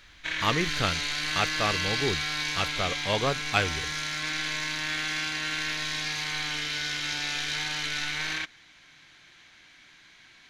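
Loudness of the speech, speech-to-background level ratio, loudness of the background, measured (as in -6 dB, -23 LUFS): -30.0 LUFS, -1.0 dB, -29.0 LUFS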